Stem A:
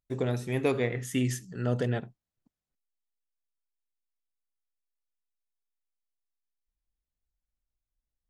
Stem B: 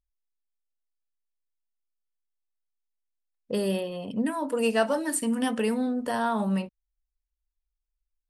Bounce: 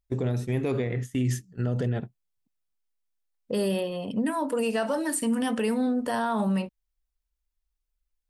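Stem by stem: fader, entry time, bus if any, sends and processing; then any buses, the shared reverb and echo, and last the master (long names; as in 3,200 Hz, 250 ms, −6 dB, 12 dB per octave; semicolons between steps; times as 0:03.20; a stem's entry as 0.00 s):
0.0 dB, 0.00 s, no send, noise gate −36 dBFS, range −15 dB; low-shelf EQ 390 Hz +8 dB
+2.5 dB, 0.00 s, no send, no processing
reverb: not used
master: brickwall limiter −18.5 dBFS, peak gain reduction 8.5 dB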